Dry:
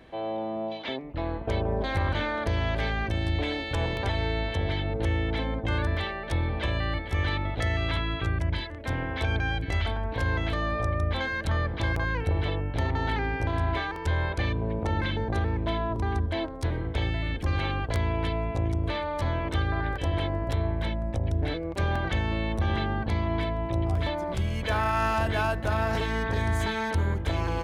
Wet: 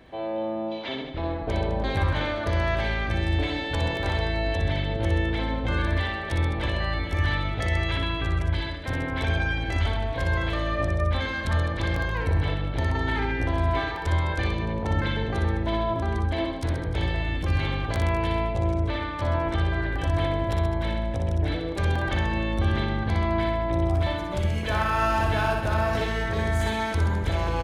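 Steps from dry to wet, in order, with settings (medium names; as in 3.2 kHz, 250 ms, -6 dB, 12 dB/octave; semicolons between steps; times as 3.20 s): 18.70–19.64 s: treble shelf 7.4 kHz -9.5 dB; reverse bouncing-ball echo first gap 60 ms, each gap 1.15×, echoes 5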